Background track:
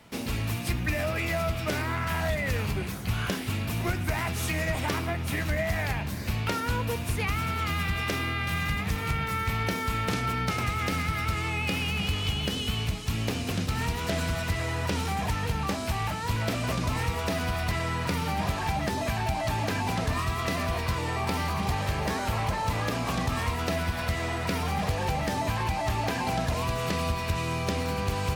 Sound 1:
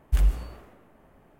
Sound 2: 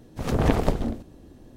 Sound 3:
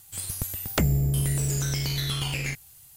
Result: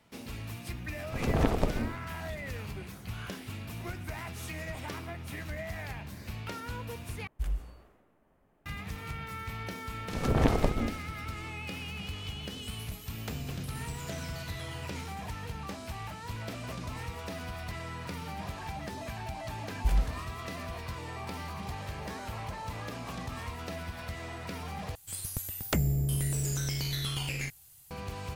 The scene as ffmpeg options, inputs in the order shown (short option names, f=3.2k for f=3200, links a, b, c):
-filter_complex "[2:a]asplit=2[a][b];[1:a]asplit=2[c][d];[3:a]asplit=2[e][f];[0:a]volume=-10.5dB,asplit=3[g][h][i];[g]atrim=end=7.274[j];[c]atrim=end=1.39,asetpts=PTS-STARTPTS,volume=-11.5dB[k];[h]atrim=start=8.656:end=24.954[l];[f]atrim=end=2.96,asetpts=PTS-STARTPTS,volume=-5dB[m];[i]atrim=start=27.906[n];[a]atrim=end=1.56,asetpts=PTS-STARTPTS,volume=-5.5dB,afade=t=in:d=0.004:c=hsin,afade=t=out:st=1.556:d=0.004:c=hsin,adelay=950[o];[b]atrim=end=1.56,asetpts=PTS-STARTPTS,volume=-4dB,afade=t=in:d=0.004:c=hsin,afade=t=out:st=1.556:d=0.004:c=hsin,adelay=9960[p];[e]atrim=end=2.96,asetpts=PTS-STARTPTS,volume=-17.5dB,afade=t=in:d=0.004:c=hsin,afade=t=out:st=2.956:d=0.004:c=hsin,adelay=12500[q];[d]atrim=end=1.39,asetpts=PTS-STARTPTS,volume=-5.5dB,afade=t=in:d=0.004:c=hsin,afade=t=out:st=1.386:d=0.004:c=hsin,adelay=869652S[r];[j][k]acrossfade=d=0.004:c1=hsin:c2=hsin[s];[s][l]acrossfade=d=0.004:c1=hsin:c2=hsin[t];[t][m]acrossfade=d=0.004:c1=hsin:c2=hsin[u];[u][n]acrossfade=d=0.004:c1=hsin:c2=hsin[v];[v][o][p][q][r]amix=inputs=5:normalize=0"